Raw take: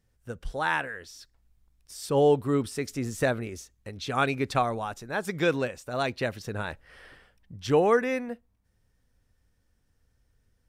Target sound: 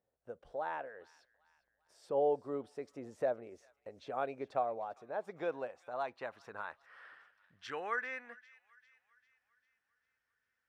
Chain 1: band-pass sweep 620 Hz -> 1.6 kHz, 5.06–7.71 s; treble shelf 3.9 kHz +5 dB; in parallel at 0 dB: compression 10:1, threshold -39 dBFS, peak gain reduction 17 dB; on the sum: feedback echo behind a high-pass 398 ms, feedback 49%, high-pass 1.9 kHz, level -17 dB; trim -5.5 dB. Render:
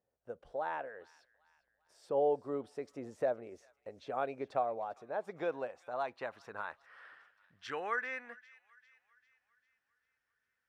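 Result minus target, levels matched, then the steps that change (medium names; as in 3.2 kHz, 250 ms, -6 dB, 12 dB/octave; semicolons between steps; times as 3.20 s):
compression: peak gain reduction -6.5 dB
change: compression 10:1, threshold -46.5 dBFS, peak gain reduction 24 dB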